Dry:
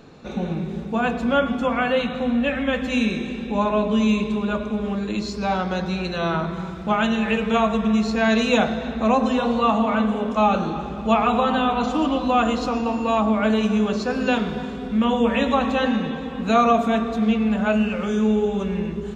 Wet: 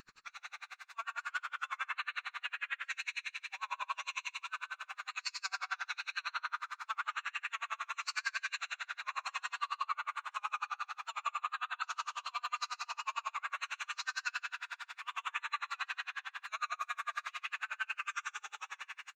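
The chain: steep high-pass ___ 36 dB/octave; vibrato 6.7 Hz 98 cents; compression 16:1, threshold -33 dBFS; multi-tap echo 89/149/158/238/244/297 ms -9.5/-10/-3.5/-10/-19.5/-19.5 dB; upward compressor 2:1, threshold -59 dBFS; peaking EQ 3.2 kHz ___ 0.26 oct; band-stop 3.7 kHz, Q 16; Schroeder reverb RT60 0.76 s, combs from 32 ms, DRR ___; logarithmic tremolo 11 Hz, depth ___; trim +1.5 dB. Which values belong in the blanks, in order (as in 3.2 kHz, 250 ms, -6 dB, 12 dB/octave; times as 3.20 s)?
1.2 kHz, -10.5 dB, 3.5 dB, 37 dB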